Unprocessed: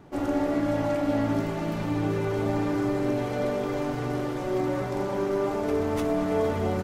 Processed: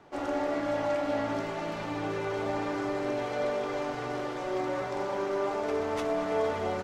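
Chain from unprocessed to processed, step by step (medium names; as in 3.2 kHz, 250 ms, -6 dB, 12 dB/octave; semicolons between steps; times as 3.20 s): three-band isolator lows -12 dB, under 420 Hz, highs -14 dB, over 7.8 kHz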